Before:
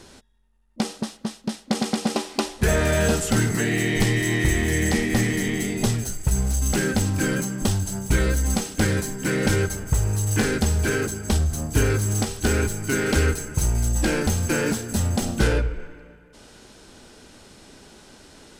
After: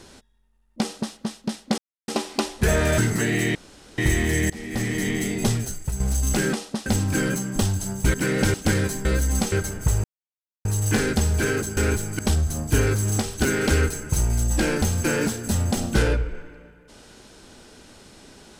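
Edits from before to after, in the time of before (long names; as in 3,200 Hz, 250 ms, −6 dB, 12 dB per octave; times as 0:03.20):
0:00.81–0:01.14: duplicate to 0:06.92
0:01.78–0:02.08: silence
0:02.98–0:03.37: remove
0:03.94–0:04.37: fill with room tone
0:04.89–0:05.46: fade in, from −23.5 dB
0:05.97–0:06.39: fade out, to −9 dB
0:08.20–0:08.67: swap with 0:09.18–0:09.58
0:10.10: splice in silence 0.61 s
0:12.48–0:12.90: move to 0:11.22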